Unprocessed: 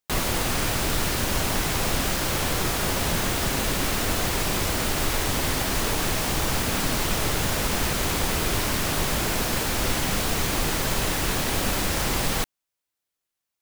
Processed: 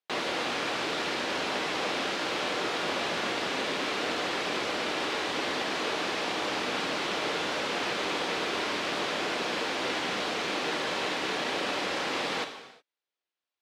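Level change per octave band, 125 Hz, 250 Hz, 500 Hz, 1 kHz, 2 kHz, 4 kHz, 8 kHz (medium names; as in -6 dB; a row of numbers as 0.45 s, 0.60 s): -19.5 dB, -6.5 dB, -2.0 dB, -2.5 dB, -2.0 dB, -3.0 dB, -14.5 dB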